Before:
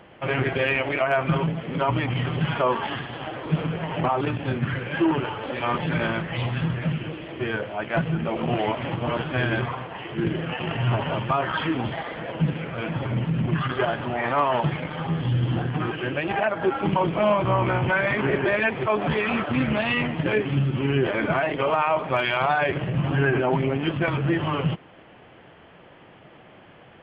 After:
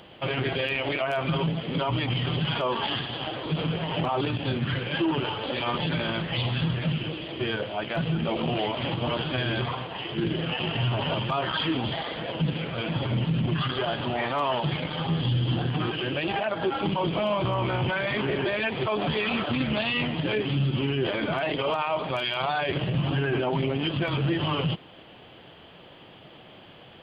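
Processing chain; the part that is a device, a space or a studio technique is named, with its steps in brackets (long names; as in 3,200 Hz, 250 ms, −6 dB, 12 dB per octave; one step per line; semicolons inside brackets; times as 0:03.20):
over-bright horn tweeter (high shelf with overshoot 2,800 Hz +10.5 dB, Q 1.5; brickwall limiter −17.5 dBFS, peak gain reduction 9 dB)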